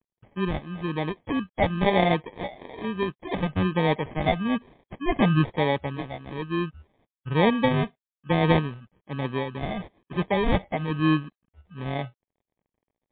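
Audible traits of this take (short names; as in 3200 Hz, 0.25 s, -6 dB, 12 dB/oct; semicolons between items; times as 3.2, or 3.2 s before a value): a quantiser's noise floor 12-bit, dither none; phasing stages 4, 1.1 Hz, lowest notch 400–1400 Hz; aliases and images of a low sample rate 1400 Hz, jitter 0%; MP3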